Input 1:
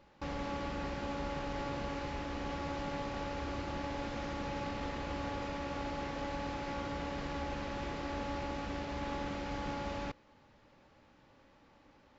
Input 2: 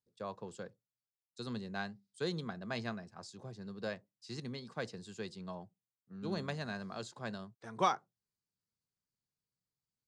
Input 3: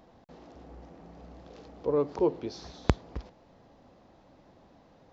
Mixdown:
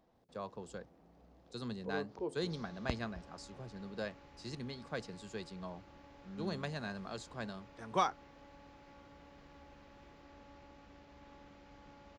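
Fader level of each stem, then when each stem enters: −19.0, −1.0, −14.0 decibels; 2.20, 0.15, 0.00 seconds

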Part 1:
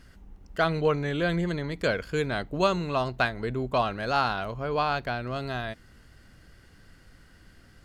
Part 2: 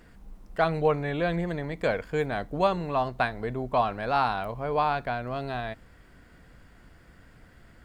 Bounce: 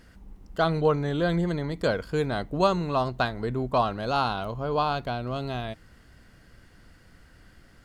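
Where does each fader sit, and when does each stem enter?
−1.5, −5.0 decibels; 0.00, 0.00 seconds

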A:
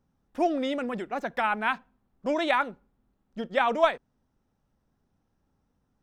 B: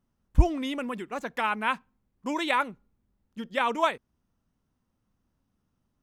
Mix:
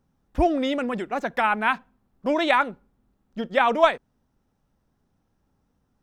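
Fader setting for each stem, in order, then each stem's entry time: +3.0, −9.0 decibels; 0.00, 0.00 seconds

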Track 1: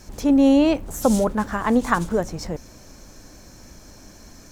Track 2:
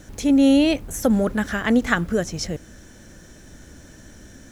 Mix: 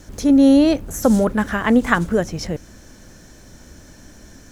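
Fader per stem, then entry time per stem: −3.5, −1.0 decibels; 0.00, 0.00 seconds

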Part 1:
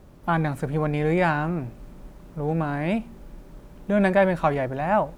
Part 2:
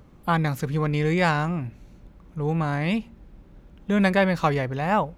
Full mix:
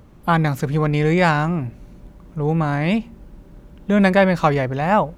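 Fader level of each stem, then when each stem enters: −5.0, +2.5 decibels; 0.00, 0.00 seconds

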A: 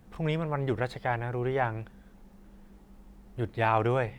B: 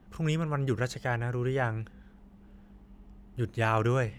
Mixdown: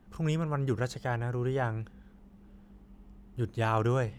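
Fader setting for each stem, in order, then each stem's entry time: −13.0, −2.5 decibels; 0.00, 0.00 seconds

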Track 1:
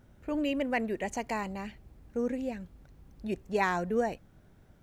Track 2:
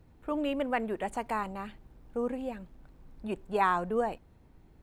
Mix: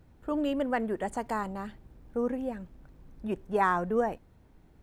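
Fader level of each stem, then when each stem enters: −8.0, −0.5 decibels; 0.00, 0.00 seconds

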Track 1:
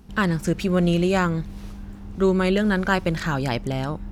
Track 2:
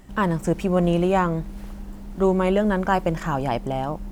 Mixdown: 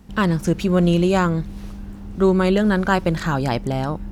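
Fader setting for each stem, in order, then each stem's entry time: +1.0, −7.5 decibels; 0.00, 0.00 seconds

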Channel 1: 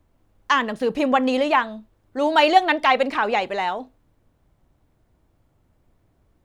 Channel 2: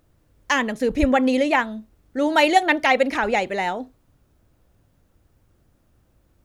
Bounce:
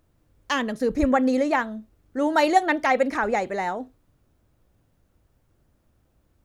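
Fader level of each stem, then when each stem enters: −9.5, −4.5 decibels; 0.00, 0.00 seconds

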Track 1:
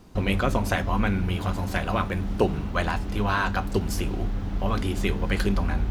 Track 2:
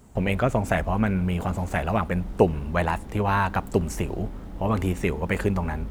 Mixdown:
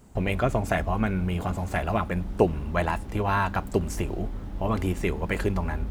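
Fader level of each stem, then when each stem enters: −12.0, −2.0 decibels; 0.00, 0.00 seconds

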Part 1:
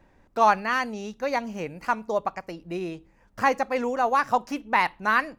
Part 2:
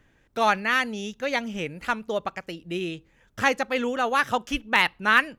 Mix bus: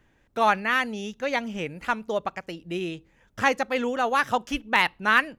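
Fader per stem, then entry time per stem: −11.5, −2.5 decibels; 0.00, 0.00 seconds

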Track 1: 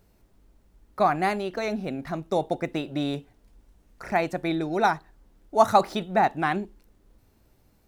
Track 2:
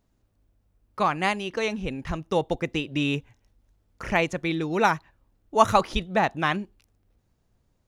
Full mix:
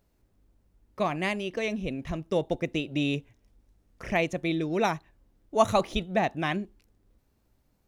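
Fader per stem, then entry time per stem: −9.5, −5.0 decibels; 0.00, 0.00 seconds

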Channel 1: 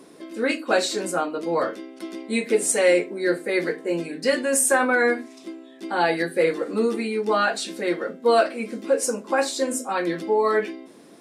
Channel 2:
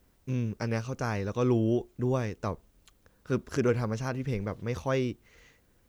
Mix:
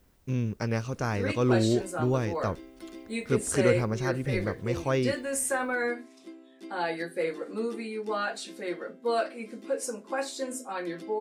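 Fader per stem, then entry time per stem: −9.5, +1.5 decibels; 0.80, 0.00 seconds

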